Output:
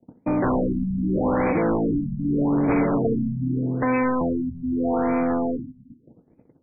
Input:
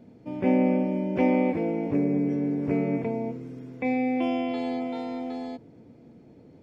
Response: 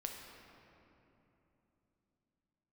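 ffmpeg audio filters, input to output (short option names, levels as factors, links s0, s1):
-filter_complex "[0:a]acrossover=split=150|430|1400[s0][s1][s2][s3];[s0]acompressor=threshold=0.00562:ratio=4[s4];[s1]acompressor=threshold=0.0178:ratio=4[s5];[s2]acompressor=threshold=0.0141:ratio=4[s6];[s3]acompressor=threshold=0.00794:ratio=4[s7];[s4][s5][s6][s7]amix=inputs=4:normalize=0,aeval=exprs='0.106*sin(PI/2*3.16*val(0)/0.106)':c=same,acontrast=84,agate=range=0.02:threshold=0.0501:ratio=16:detection=peak,asplit=2[s8][s9];[1:a]atrim=start_sample=2205,afade=t=out:st=0.36:d=0.01,atrim=end_sample=16317[s10];[s9][s10]afir=irnorm=-1:irlink=0,volume=0.75[s11];[s8][s11]amix=inputs=2:normalize=0,afftfilt=real='re*lt(b*sr/1024,240*pow(2600/240,0.5+0.5*sin(2*PI*0.82*pts/sr)))':imag='im*lt(b*sr/1024,240*pow(2600/240,0.5+0.5*sin(2*PI*0.82*pts/sr)))':win_size=1024:overlap=0.75,volume=0.376"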